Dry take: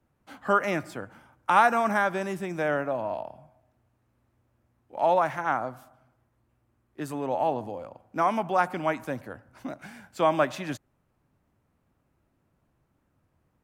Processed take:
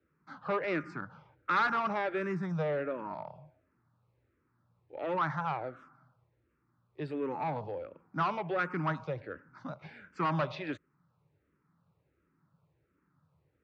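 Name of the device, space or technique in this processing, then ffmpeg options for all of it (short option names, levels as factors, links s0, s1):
barber-pole phaser into a guitar amplifier: -filter_complex "[0:a]asplit=2[s0][s1];[s1]afreqshift=-1.4[s2];[s0][s2]amix=inputs=2:normalize=1,asoftclip=type=tanh:threshold=0.0562,highpass=83,equalizer=f=160:t=q:w=4:g=9,equalizer=f=230:t=q:w=4:g=-6,equalizer=f=440:t=q:w=4:g=3,equalizer=f=700:t=q:w=4:g=-8,equalizer=f=1300:t=q:w=4:g=5,equalizer=f=3100:t=q:w=4:g=-6,lowpass=f=4400:w=0.5412,lowpass=f=4400:w=1.3066"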